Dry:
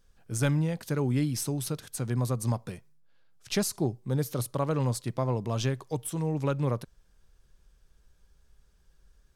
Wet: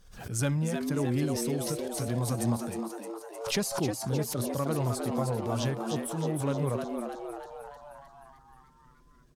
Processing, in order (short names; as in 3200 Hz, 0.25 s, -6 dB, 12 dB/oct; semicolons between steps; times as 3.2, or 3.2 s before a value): bin magnitudes rounded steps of 15 dB; added harmonics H 5 -36 dB, 6 -45 dB, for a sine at -15.5 dBFS; frequency-shifting echo 0.309 s, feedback 59%, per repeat +110 Hz, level -5.5 dB; backwards sustainer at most 75 dB/s; gain -2.5 dB